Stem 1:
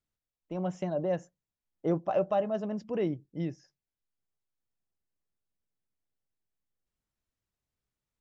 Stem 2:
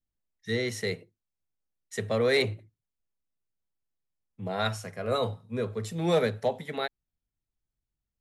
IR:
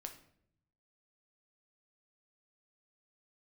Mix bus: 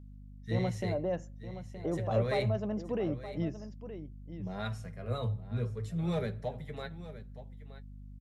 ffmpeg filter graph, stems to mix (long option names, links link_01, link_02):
-filter_complex "[0:a]alimiter=level_in=1dB:limit=-24dB:level=0:latency=1:release=147,volume=-1dB,aeval=exprs='val(0)+0.00398*(sin(2*PI*50*n/s)+sin(2*PI*2*50*n/s)/2+sin(2*PI*3*50*n/s)/3+sin(2*PI*4*50*n/s)/4+sin(2*PI*5*50*n/s)/5)':channel_layout=same,volume=-0.5dB,asplit=3[link_01][link_02][link_03];[link_02]volume=-19dB[link_04];[link_03]volume=-11dB[link_05];[1:a]bass=frequency=250:gain=2,treble=frequency=4000:gain=-3,flanger=delay=4.9:depth=4.5:regen=45:speed=0.65:shape=sinusoidal,equalizer=frequency=130:width_type=o:width=0.81:gain=13,volume=-9.5dB,asplit=3[link_06][link_07][link_08];[link_07]volume=-5dB[link_09];[link_08]volume=-12dB[link_10];[2:a]atrim=start_sample=2205[link_11];[link_04][link_09]amix=inputs=2:normalize=0[link_12];[link_12][link_11]afir=irnorm=-1:irlink=0[link_13];[link_05][link_10]amix=inputs=2:normalize=0,aecho=0:1:921:1[link_14];[link_01][link_06][link_13][link_14]amix=inputs=4:normalize=0"